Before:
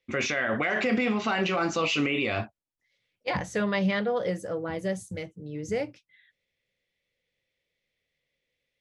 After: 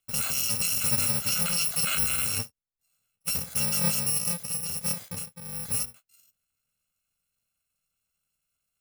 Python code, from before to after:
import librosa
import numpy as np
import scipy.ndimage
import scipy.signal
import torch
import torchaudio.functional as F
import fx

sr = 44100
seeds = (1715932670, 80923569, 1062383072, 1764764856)

y = fx.bit_reversed(x, sr, seeds[0], block=128)